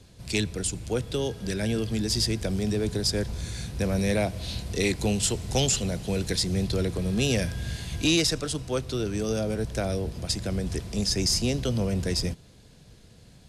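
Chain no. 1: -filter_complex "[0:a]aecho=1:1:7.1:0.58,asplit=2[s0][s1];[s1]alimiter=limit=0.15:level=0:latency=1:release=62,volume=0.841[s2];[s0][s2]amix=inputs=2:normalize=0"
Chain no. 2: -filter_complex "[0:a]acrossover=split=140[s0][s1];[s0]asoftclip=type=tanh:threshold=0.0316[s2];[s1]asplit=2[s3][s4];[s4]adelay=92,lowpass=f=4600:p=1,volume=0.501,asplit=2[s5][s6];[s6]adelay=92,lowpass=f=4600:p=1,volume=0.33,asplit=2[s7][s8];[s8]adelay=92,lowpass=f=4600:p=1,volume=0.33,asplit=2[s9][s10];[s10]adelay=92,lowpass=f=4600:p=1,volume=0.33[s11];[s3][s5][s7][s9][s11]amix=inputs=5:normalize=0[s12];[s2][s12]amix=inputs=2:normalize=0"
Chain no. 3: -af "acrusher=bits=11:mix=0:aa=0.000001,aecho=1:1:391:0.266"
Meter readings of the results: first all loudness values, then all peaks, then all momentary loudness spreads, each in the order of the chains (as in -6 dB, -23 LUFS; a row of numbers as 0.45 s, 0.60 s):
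-22.0 LUFS, -27.0 LUFS, -27.0 LUFS; -6.5 dBFS, -9.0 dBFS, -12.5 dBFS; 7 LU, 8 LU, 7 LU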